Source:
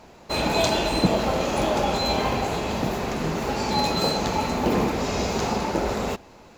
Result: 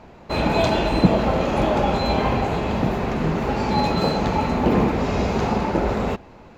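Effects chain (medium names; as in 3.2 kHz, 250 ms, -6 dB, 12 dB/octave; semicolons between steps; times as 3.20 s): tone controls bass +4 dB, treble -13 dB; trim +2.5 dB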